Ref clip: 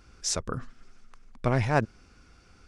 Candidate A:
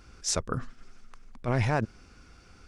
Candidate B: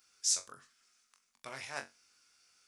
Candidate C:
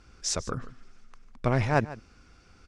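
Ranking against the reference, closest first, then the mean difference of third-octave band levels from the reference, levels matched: C, A, B; 2.0, 3.0, 9.0 decibels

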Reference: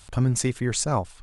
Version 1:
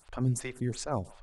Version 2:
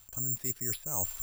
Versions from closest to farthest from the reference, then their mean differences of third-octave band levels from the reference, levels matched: 1, 2; 4.5, 10.5 decibels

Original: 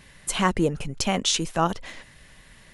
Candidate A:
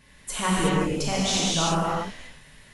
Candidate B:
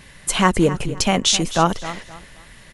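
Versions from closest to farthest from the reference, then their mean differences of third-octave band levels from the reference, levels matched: B, A; 2.5, 8.0 decibels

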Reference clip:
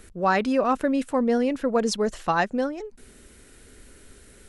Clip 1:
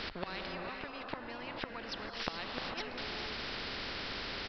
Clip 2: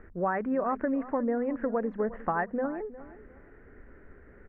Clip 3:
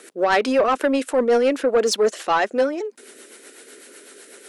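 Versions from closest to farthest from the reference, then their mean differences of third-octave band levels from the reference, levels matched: 3, 2, 1; 4.5, 7.5, 18.0 decibels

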